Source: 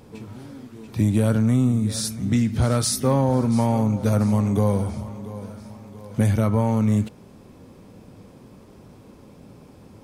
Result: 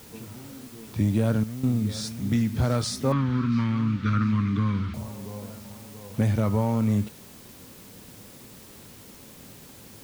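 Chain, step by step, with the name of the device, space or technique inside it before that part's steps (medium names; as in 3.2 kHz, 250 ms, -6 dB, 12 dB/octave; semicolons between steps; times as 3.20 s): worn cassette (low-pass 6.2 kHz; wow and flutter; level dips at 1.44 s, 192 ms -13 dB; white noise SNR 23 dB); 3.12–4.94 s: FFT filter 310 Hz 0 dB, 520 Hz -20 dB, 790 Hz -22 dB, 1.2 kHz +10 dB, 3.8 kHz +3 dB, 11 kHz -25 dB; trim -3.5 dB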